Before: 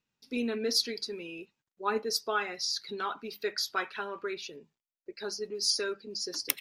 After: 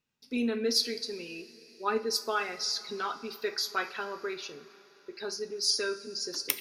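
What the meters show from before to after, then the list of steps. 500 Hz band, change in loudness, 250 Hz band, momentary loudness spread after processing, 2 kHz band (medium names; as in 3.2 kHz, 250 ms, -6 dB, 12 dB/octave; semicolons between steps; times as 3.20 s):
+1.0 dB, +1.0 dB, +2.0 dB, 15 LU, +0.5 dB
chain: two-slope reverb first 0.34 s, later 4.5 s, from -18 dB, DRR 8.5 dB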